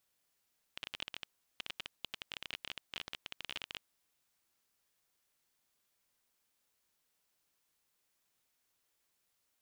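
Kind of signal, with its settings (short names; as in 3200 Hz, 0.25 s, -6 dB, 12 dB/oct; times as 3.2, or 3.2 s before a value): random clicks 21/s -23.5 dBFS 3.17 s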